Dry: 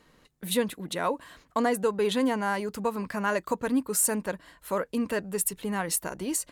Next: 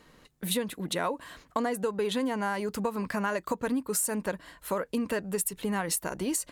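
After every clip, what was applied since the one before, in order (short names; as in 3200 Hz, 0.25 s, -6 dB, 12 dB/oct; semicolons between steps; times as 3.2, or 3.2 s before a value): compressor, threshold -29 dBFS, peak gain reduction 9 dB; gain +3 dB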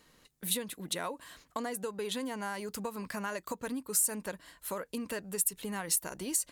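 high shelf 3300 Hz +10 dB; gain -8 dB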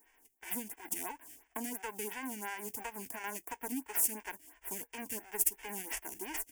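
spectral whitening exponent 0.3; fixed phaser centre 820 Hz, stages 8; photocell phaser 2.9 Hz; gain +2.5 dB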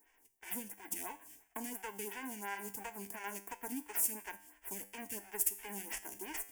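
resonator 100 Hz, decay 0.55 s, harmonics all, mix 60%; gain +3.5 dB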